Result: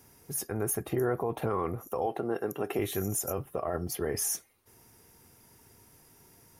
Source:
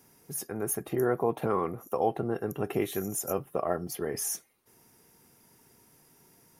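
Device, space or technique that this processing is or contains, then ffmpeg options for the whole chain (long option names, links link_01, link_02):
car stereo with a boomy subwoofer: -filter_complex "[0:a]asettb=1/sr,asplit=3[link_01][link_02][link_03];[link_01]atrim=end=2.064[link_04];[link_02]atrim=start=2.06:end=2.79,asetpts=PTS-STARTPTS,afade=type=in:duration=0.004:curve=qsin,afade=type=out:start_time=0.726:duration=0.004:curve=qsin,highpass=240[link_05];[link_03]atrim=start=2.786[link_06];[link_04][link_05]acrossfade=duration=0.004:curve1=hsin:curve2=qsin[link_07];[link_07][link_06]acrossfade=duration=0.004:curve1=qsin:curve2=hsin,lowshelf=frequency=120:width_type=q:width=1.5:gain=6.5,alimiter=limit=-22dB:level=0:latency=1:release=34,volume=2dB"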